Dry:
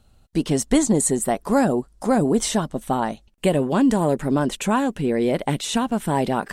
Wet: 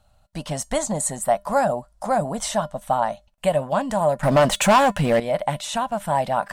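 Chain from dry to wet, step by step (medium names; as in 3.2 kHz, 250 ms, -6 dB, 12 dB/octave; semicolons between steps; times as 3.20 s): FFT filter 150 Hz 0 dB, 400 Hz -15 dB, 600 Hz +9 dB, 2.4 kHz +1 dB; 4.23–5.20 s: waveshaping leveller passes 3; feedback comb 200 Hz, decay 0.2 s, harmonics odd, mix 40%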